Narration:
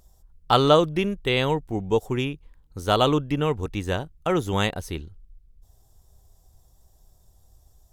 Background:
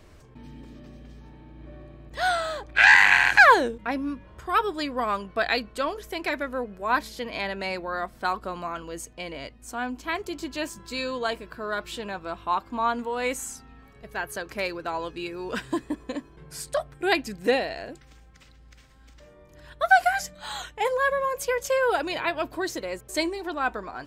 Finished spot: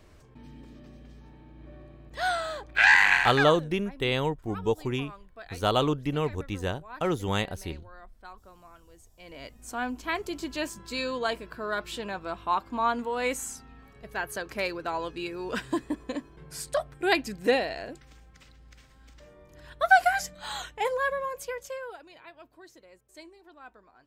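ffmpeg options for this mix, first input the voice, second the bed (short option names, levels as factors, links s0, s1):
-filter_complex "[0:a]adelay=2750,volume=0.596[s0];[1:a]volume=5.96,afade=t=out:st=3.13:d=0.37:silence=0.149624,afade=t=in:st=9.17:d=0.46:silence=0.112202,afade=t=out:st=20.57:d=1.41:silence=0.0891251[s1];[s0][s1]amix=inputs=2:normalize=0"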